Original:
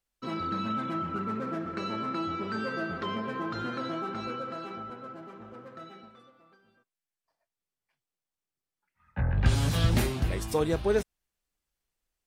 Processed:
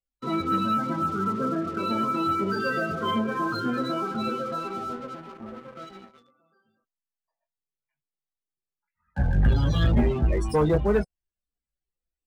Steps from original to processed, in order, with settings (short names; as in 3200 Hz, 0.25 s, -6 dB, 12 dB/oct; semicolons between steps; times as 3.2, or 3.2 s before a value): loudest bins only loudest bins 32; chorus voices 6, 0.17 Hz, delay 17 ms, depth 4.3 ms; sample leveller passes 2; gain +2 dB